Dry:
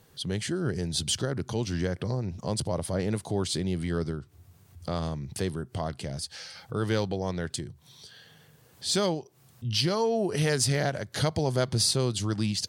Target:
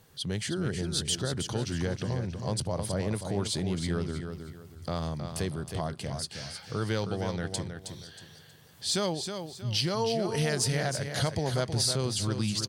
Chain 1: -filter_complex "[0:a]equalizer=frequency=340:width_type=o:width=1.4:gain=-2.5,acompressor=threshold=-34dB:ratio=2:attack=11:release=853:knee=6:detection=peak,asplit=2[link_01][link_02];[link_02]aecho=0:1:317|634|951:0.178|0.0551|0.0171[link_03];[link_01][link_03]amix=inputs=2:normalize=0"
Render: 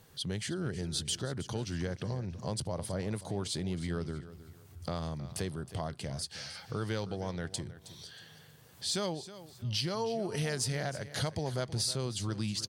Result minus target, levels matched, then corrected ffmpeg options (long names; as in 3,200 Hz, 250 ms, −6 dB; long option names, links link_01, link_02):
echo-to-direct −7.5 dB; downward compressor: peak gain reduction +5 dB
-filter_complex "[0:a]equalizer=frequency=340:width_type=o:width=1.4:gain=-2.5,acompressor=threshold=-24dB:ratio=2:attack=11:release=853:knee=6:detection=peak,asplit=2[link_01][link_02];[link_02]aecho=0:1:317|634|951|1268:0.422|0.131|0.0405|0.0126[link_03];[link_01][link_03]amix=inputs=2:normalize=0"